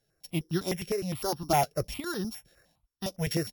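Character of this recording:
a buzz of ramps at a fixed pitch in blocks of 8 samples
sample-and-hold tremolo
notches that jump at a steady rate 9.8 Hz 270–2,200 Hz

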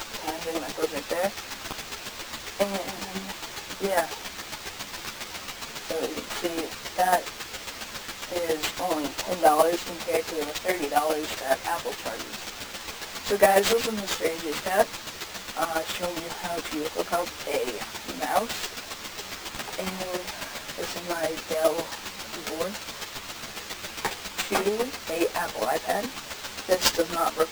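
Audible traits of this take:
a quantiser's noise floor 6 bits, dither triangular
chopped level 7.3 Hz, depth 60%, duty 15%
aliases and images of a low sample rate 11,000 Hz, jitter 20%
a shimmering, thickened sound

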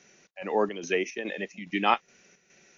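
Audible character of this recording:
a quantiser's noise floor 10 bits, dither none
chopped level 2.4 Hz, depth 60%, duty 65%
MP3

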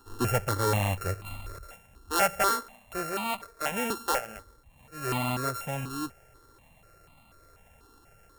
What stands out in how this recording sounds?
a buzz of ramps at a fixed pitch in blocks of 32 samples
notches that jump at a steady rate 4.1 Hz 610–1,600 Hz

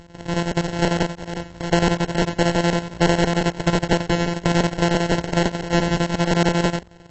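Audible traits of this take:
a buzz of ramps at a fixed pitch in blocks of 256 samples
chopped level 11 Hz, depth 60%, duty 70%
aliases and images of a low sample rate 1,200 Hz, jitter 0%
AAC

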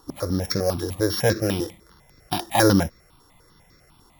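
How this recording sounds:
a buzz of ramps at a fixed pitch in blocks of 8 samples
notches that jump at a steady rate 10 Hz 610–3,000 Hz

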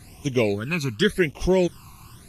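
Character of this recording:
a quantiser's noise floor 8 bits, dither none
phaser sweep stages 12, 0.9 Hz, lowest notch 550–1,500 Hz
Ogg Vorbis

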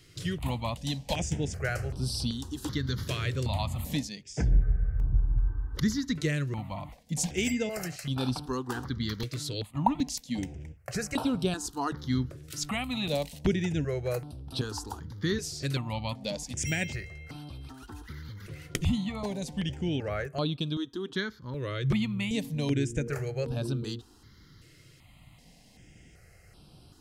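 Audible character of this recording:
notches that jump at a steady rate 2.6 Hz 220–6,800 Hz

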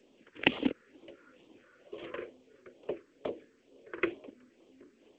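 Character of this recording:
phaser sweep stages 4, 2.2 Hz, lowest notch 720–1,500 Hz
G.722

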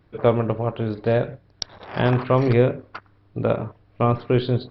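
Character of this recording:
background noise floor −58 dBFS
spectral slope −6.5 dB per octave

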